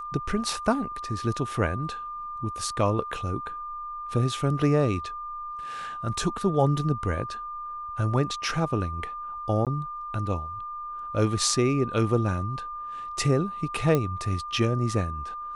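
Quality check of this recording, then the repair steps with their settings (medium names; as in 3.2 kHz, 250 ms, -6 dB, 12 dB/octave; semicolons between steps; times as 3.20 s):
whine 1.2 kHz -33 dBFS
9.65–9.67 s: dropout 17 ms
13.95 s: pop -12 dBFS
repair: de-click; band-stop 1.2 kHz, Q 30; interpolate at 9.65 s, 17 ms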